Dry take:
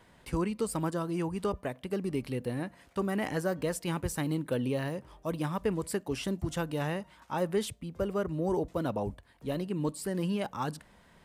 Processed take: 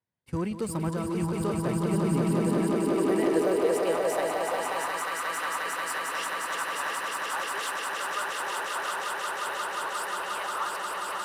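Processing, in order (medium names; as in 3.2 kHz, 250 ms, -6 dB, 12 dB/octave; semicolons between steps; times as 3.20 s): echo with a slow build-up 178 ms, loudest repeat 8, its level -4 dB; high-pass sweep 100 Hz -> 1.2 kHz, 1.49–5.19 s; in parallel at -6 dB: overload inside the chain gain 32 dB; on the sum: expander -33 dBFS; trim -3 dB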